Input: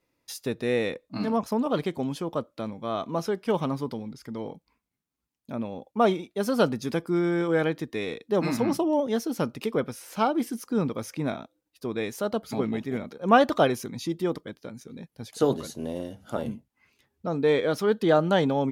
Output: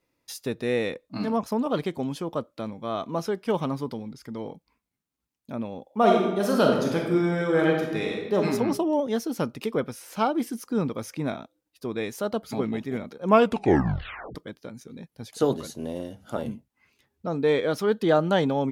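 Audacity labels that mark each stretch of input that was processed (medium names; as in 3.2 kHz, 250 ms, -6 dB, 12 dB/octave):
5.840000	8.360000	reverb throw, RT60 1.1 s, DRR -0.5 dB
13.260000	13.260000	tape stop 1.09 s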